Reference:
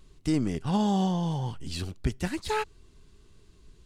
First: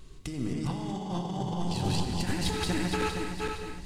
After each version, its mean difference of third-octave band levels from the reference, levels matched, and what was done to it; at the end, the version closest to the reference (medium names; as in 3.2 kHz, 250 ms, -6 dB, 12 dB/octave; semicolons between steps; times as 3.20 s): 13.5 dB: backward echo that repeats 232 ms, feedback 62%, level -2 dB; compressor with a negative ratio -32 dBFS, ratio -1; gated-style reverb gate 280 ms flat, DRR 4.5 dB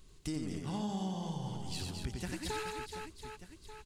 10.5 dB: on a send: reverse bouncing-ball echo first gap 90 ms, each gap 1.5×, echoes 5; on the sum: compression 2.5:1, threshold -34 dBFS, peak gain reduction 11 dB; treble shelf 3.9 kHz +7 dB; trim -4.5 dB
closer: second